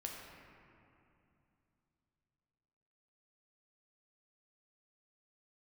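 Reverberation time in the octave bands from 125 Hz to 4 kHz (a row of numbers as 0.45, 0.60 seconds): 4.0, 3.5, 2.8, 2.7, 2.3, 1.6 seconds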